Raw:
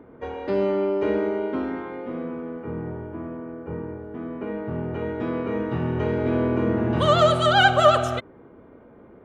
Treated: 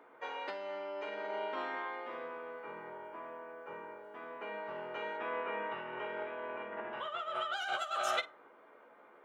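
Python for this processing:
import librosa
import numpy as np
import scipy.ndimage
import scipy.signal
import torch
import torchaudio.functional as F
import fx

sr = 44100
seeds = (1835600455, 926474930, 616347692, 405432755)

y = fx.tracing_dist(x, sr, depth_ms=0.028)
y = fx.savgol(y, sr, points=25, at=(5.16, 7.52), fade=0.02)
y = fx.rev_fdn(y, sr, rt60_s=0.59, lf_ratio=1.0, hf_ratio=0.5, size_ms=34.0, drr_db=16.5)
y = fx.over_compress(y, sr, threshold_db=-26.0, ratio=-1.0)
y = scipy.signal.sosfilt(scipy.signal.butter(2, 930.0, 'highpass', fs=sr, output='sos'), y)
y = fx.room_early_taps(y, sr, ms=(14, 53), db=(-5.5, -15.5))
y = F.gain(torch.from_numpy(y), -4.0).numpy()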